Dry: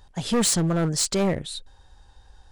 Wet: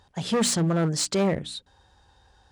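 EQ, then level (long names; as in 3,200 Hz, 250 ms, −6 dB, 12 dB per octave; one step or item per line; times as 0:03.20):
high-pass filter 80 Hz 12 dB per octave
high-shelf EQ 8,700 Hz −9 dB
mains-hum notches 60/120/180/240/300 Hz
0.0 dB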